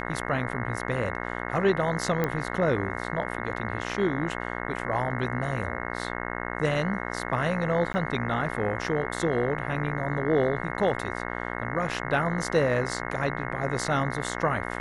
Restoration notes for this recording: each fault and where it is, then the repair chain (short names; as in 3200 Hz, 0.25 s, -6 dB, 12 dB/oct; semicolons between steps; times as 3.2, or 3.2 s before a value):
buzz 60 Hz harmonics 36 -33 dBFS
2.24 pop -13 dBFS
7.93–7.94 gap 10 ms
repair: de-click; de-hum 60 Hz, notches 36; interpolate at 7.93, 10 ms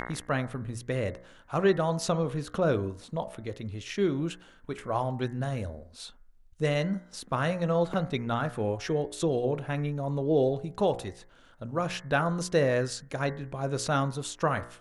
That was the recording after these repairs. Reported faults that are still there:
none